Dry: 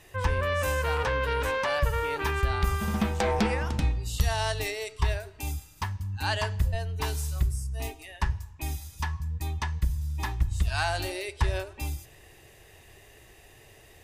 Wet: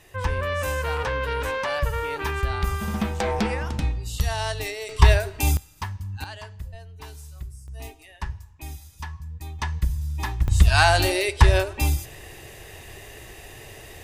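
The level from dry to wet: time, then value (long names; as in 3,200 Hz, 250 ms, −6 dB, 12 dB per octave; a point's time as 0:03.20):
+1 dB
from 0:04.89 +12 dB
from 0:05.57 +0.5 dB
from 0:06.24 −10.5 dB
from 0:07.68 −4 dB
from 0:09.59 +3 dB
from 0:10.48 +11 dB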